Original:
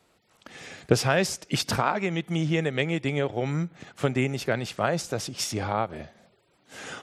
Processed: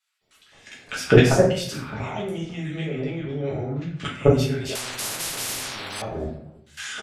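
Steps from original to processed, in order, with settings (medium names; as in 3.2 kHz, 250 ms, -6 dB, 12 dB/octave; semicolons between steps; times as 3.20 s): level held to a coarse grid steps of 21 dB; 2.88–4.04 s: distance through air 150 m; bands offset in time highs, lows 210 ms, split 1.3 kHz; simulated room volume 83 m³, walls mixed, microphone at 1.4 m; 4.75–6.02 s: spectrum-flattening compressor 10:1; trim +6 dB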